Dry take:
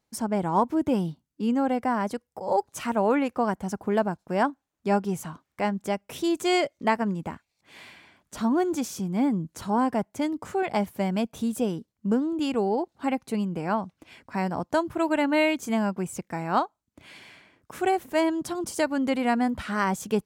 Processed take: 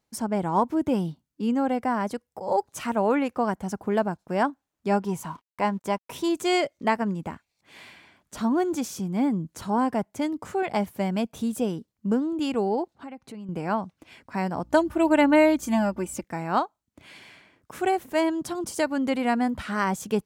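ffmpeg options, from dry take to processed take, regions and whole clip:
-filter_complex "[0:a]asettb=1/sr,asplit=3[s0][s1][s2];[s0]atrim=end=5.024[s3];[s1]atrim=start=5.02:end=6.29,asetpts=PTS-STARTPTS,afade=t=in:d=0.004:c=qsin,afade=t=out:st=1.266:d=0.004:c=qsin,equalizer=f=970:t=o:w=0.21:g=13,aeval=exprs='sgn(val(0))*max(abs(val(0))-0.00119,0)':c=same[s4];[s2]atrim=start=6.286[s5];[s3][s4]acrossfade=d=0.004:c1=hsin:c2=qsin[s6];[s6][s5]acrossfade=d=0.004:c1=qsin:c2=hsin,asettb=1/sr,asplit=3[s7][s8][s9];[s7]atrim=end=12.944[s10];[s8]atrim=start=12.94:end=13.49,asetpts=PTS-STARTPTS,afade=t=in:d=0.004:c=qsin,afade=t=out:st=0.546:d=0.004:c=qsin,lowpass=f=3900:p=1,acompressor=threshold=0.01:ratio=3:attack=3.2:release=140:knee=1:detection=peak[s11];[s9]atrim=start=13.486[s12];[s10][s11]acrossfade=d=0.004:c1=hsin:c2=qsin[s13];[s13][s12]acrossfade=d=0.004:c1=qsin:c2=hsin,asettb=1/sr,asplit=3[s14][s15][s16];[s14]atrim=end=14.644[s17];[s15]atrim=start=14.64:end=16.24,asetpts=PTS-STARTPTS,afade=t=in:d=0.004:c=qsin,afade=t=out:st=1.596:d=0.004:c=qsin,aecho=1:1:3.4:0.84,atrim=end_sample=70560,aeval=exprs='val(0)+0.00251*(sin(2*PI*60*n/s)+sin(2*PI*2*60*n/s)/2+sin(2*PI*3*60*n/s)/3+sin(2*PI*4*60*n/s)/4+sin(2*PI*5*60*n/s)/5)':c=same[s18];[s16]atrim=start=16.236[s19];[s17][s18]acrossfade=d=0.004:c1=hsin:c2=qsin[s20];[s20][s19]acrossfade=d=0.004:c1=qsin:c2=hsin"

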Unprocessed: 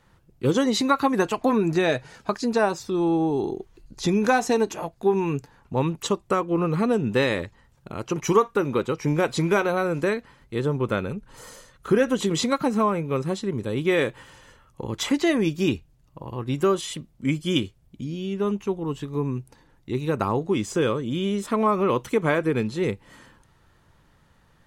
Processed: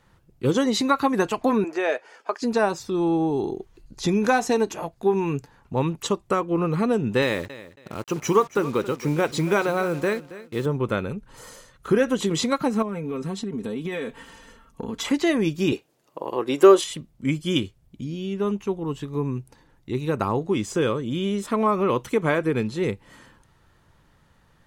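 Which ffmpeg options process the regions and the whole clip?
-filter_complex "[0:a]asettb=1/sr,asplit=3[s0][s1][s2];[s0]atrim=end=1.644[s3];[s1]atrim=start=1.64:end=2.42,asetpts=PTS-STARTPTS,afade=t=in:d=0.004:c=qsin,afade=t=out:st=0.776:d=0.004:c=qsin,highpass=f=390:w=0.5412,highpass=f=390:w=1.3066,highshelf=f=6100:g=-11.5,bandreject=f=3900:w=5.9[s4];[s2]atrim=start=2.416[s5];[s3][s4]acrossfade=d=0.004:c1=hsin:c2=qsin[s6];[s6][s5]acrossfade=d=0.004:c1=qsin:c2=hsin,asettb=1/sr,asplit=3[s7][s8][s9];[s7]atrim=end=7.224[s10];[s8]atrim=start=7.22:end=10.66,asetpts=PTS-STARTPTS,afade=t=in:d=0.004:c=qsin,afade=t=out:st=3.436:d=0.004:c=qsin,highpass=f=81:p=1,acrusher=bits=6:mix=0:aa=0.5,aecho=1:1:275|550:0.158|0.038,atrim=end_sample=151704[s11];[s9]atrim=start=10.656[s12];[s10][s11]acrossfade=d=0.004:c1=hsin:c2=qsin[s13];[s13][s12]acrossfade=d=0.004:c1=qsin:c2=hsin,asettb=1/sr,asplit=3[s14][s15][s16];[s14]atrim=end=12.824[s17];[s15]atrim=start=12.82:end=15.05,asetpts=PTS-STARTPTS,afade=t=in:d=0.004:c=qsin,afade=t=out:st=2.226:d=0.004:c=qsin,equalizer=f=270:t=o:w=1:g=5.5,aecho=1:1:4.4:0.69,atrim=end_sample=98343,acompressor=threshold=0.0562:ratio=16:attack=3.2:release=140:knee=1:detection=peak[s18];[s16]atrim=start=15.046[s19];[s17][s18]acrossfade=d=0.004:c1=hsin:c2=qsin[s20];[s20][s19]acrossfade=d=0.004:c1=qsin:c2=hsin,asettb=1/sr,asplit=3[s21][s22][s23];[s21]atrim=end=15.724[s24];[s22]atrim=start=15.72:end=16.84,asetpts=PTS-STARTPTS,afade=t=in:d=0.004:c=qsin,afade=t=out:st=1.116:d=0.004:c=qsin,acontrast=56,highpass=f=410:t=q:w=1.6[s25];[s23]atrim=start=16.836[s26];[s24][s25]acrossfade=d=0.004:c1=hsin:c2=qsin[s27];[s27][s26]acrossfade=d=0.004:c1=qsin:c2=hsin"

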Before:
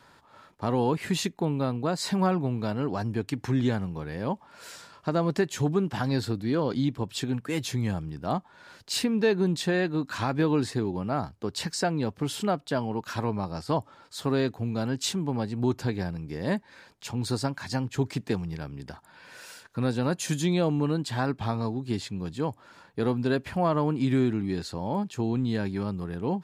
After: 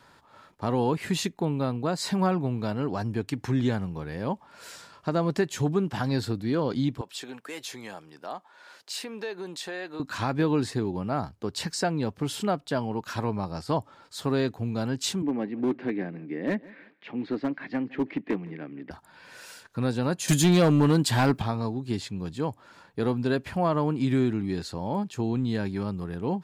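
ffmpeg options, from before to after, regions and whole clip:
-filter_complex "[0:a]asettb=1/sr,asplit=3[s0][s1][s2];[s0]atrim=end=7.014[s3];[s1]atrim=start=7.01:end=10,asetpts=PTS-STARTPTS,afade=t=in:d=0.004:c=qsin,afade=t=out:st=2.986:d=0.004:c=qsin,highpass=480,acompressor=threshold=0.0178:ratio=2:attack=3.2:release=140:knee=1:detection=peak[s4];[s2]atrim=start=9.996[s5];[s3][s4]acrossfade=d=0.004:c1=hsin:c2=qsin[s6];[s6][s5]acrossfade=d=0.004:c1=qsin:c2=hsin,asettb=1/sr,asplit=3[s7][s8][s9];[s7]atrim=end=15.224[s10];[s8]atrim=start=15.22:end=18.91,asetpts=PTS-STARTPTS,afade=t=in:d=0.004:c=qsin,afade=t=out:st=3.686:d=0.004:c=qsin,highpass=f=190:w=0.5412,highpass=f=190:w=1.3066,equalizer=f=300:t=q:w=4:g=8,equalizer=f=920:t=q:w=4:g=-8,equalizer=f=1400:t=q:w=4:g=-4,equalizer=f=2000:t=q:w=4:g=6,lowpass=f=2700:w=0.5412,lowpass=f=2700:w=1.3066,asoftclip=type=hard:threshold=0.1,aecho=1:1:162|324:0.0841|0.0227,atrim=end_sample=162729[s11];[s9]atrim=start=18.906[s12];[s10][s11]acrossfade=d=0.004:c1=hsin:c2=qsin[s13];[s13][s12]acrossfade=d=0.004:c1=qsin:c2=hsin,asettb=1/sr,asplit=3[s14][s15][s16];[s14]atrim=end=20.284[s17];[s15]atrim=start=20.28:end=21.42,asetpts=PTS-STARTPTS,afade=t=in:d=0.004:c=qsin,afade=t=out:st=1.136:d=0.004:c=qsin,highshelf=f=10000:g=11.5,acontrast=79,volume=5.62,asoftclip=hard,volume=0.178[s18];[s16]atrim=start=21.416[s19];[s17][s18]acrossfade=d=0.004:c1=hsin:c2=qsin[s20];[s20][s19]acrossfade=d=0.004:c1=qsin:c2=hsin"

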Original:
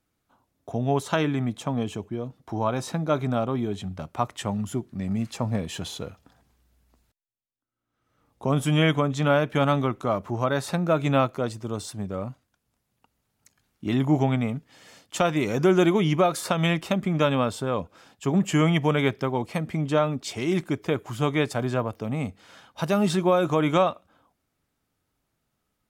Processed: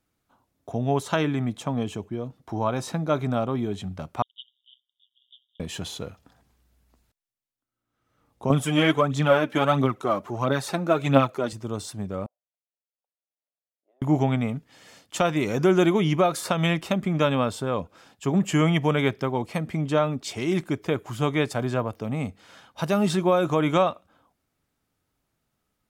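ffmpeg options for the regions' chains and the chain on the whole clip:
-filter_complex "[0:a]asettb=1/sr,asplit=3[s0][s1][s2];[s0]atrim=end=4.224[s3];[s1]atrim=start=4.22:end=5.6,asetpts=PTS-STARTPTS,afade=t=in:d=0.004:c=qsin,afade=t=out:st=1.376:d=0.004:c=qsin,asuperpass=centerf=3300:order=20:qfactor=4.2,aeval=exprs='val(0)*sin(2*PI*64*n/s)':c=same[s4];[s2]atrim=start=5.596[s5];[s3][s4]acrossfade=d=0.004:c1=hsin:c2=qsin[s6];[s6][s5]acrossfade=d=0.004:c1=qsin:c2=hsin,asettb=1/sr,asplit=3[s7][s8][s9];[s7]atrim=end=8.504[s10];[s8]atrim=start=8.5:end=11.53,asetpts=PTS-STARTPTS,afade=t=in:d=0.004:c=qsin,afade=t=out:st=3.026:d=0.004:c=qsin,highpass=130,aphaser=in_gain=1:out_gain=1:delay=3.9:decay=0.54:speed=1.5:type=triangular[s11];[s9]atrim=start=11.526[s12];[s10][s11]acrossfade=d=0.004:c1=hsin:c2=qsin[s13];[s13][s12]acrossfade=d=0.004:c1=qsin:c2=hsin,asettb=1/sr,asplit=3[s14][s15][s16];[s14]atrim=end=12.264[s17];[s15]atrim=start=12.26:end=14.02,asetpts=PTS-STARTPTS,afade=t=in:d=0.004:c=qsin,afade=t=out:st=1.756:d=0.004:c=qsin,asuperpass=centerf=580:order=4:qfactor=2.8,aderivative[s18];[s16]atrim=start=14.016[s19];[s17][s18]acrossfade=d=0.004:c1=hsin:c2=qsin[s20];[s20][s19]acrossfade=d=0.004:c1=qsin:c2=hsin"

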